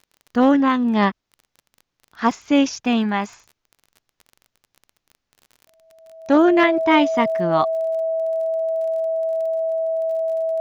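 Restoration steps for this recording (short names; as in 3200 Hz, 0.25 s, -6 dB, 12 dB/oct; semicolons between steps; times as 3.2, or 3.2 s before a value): de-click; notch 650 Hz, Q 30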